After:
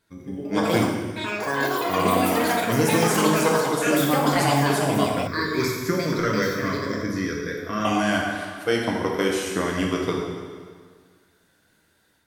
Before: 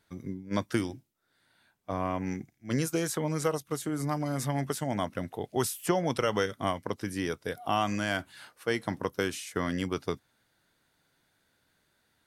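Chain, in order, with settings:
spectral magnitudes quantised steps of 15 dB
dense smooth reverb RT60 1.8 s, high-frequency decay 0.85×, DRR −1.5 dB
delay with pitch and tempo change per echo 200 ms, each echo +7 semitones, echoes 3
0:05.27–0:07.85: phaser with its sweep stopped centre 2,900 Hz, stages 6
automatic gain control gain up to 5 dB
mains-hum notches 50/100/150/200 Hz

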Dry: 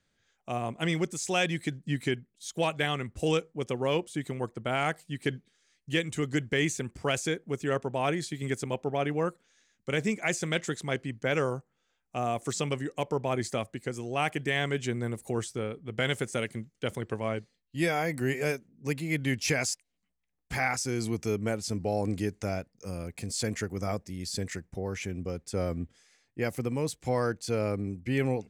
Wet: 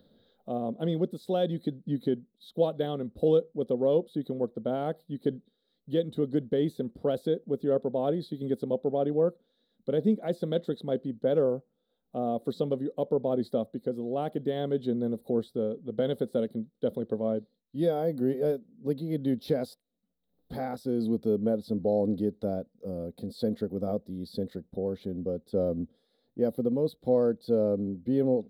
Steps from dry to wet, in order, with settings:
upward compression, threshold −48 dBFS
drawn EQ curve 120 Hz 0 dB, 230 Hz +14 dB, 340 Hz +7 dB, 510 Hz +14 dB, 990 Hz −4 dB, 1,400 Hz −6 dB, 2,500 Hz −22 dB, 3,800 Hz +7 dB, 6,500 Hz −28 dB, 13,000 Hz +2 dB
level −7 dB

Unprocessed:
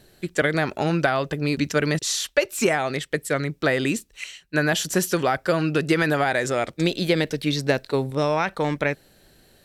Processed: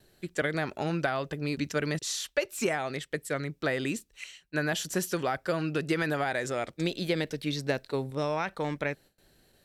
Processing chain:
noise gate with hold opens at −45 dBFS
level −8 dB

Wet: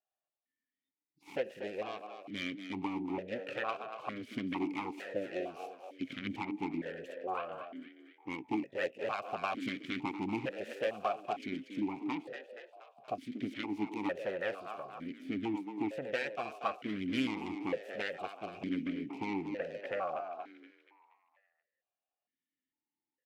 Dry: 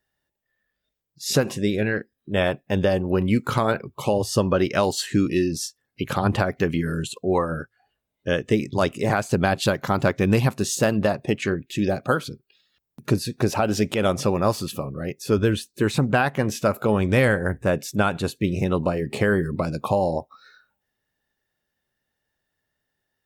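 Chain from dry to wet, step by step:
phase distortion by the signal itself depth 0.65 ms
echo with shifted repeats 237 ms, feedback 53%, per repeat +99 Hz, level −10 dB
formant filter that steps through the vowels 2.2 Hz
level −3 dB

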